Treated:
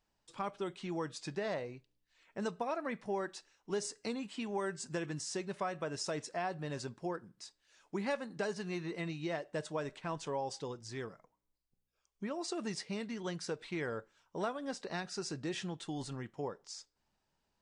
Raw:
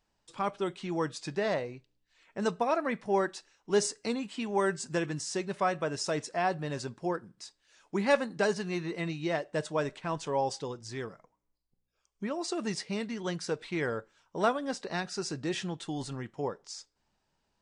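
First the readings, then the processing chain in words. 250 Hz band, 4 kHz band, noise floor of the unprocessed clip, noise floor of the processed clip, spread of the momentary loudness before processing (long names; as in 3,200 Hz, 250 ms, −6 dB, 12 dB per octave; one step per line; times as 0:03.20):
−6.0 dB, −5.5 dB, −79 dBFS, −82 dBFS, 11 LU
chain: downward compressor 3 to 1, threshold −30 dBFS, peak gain reduction 8.5 dB
level −4 dB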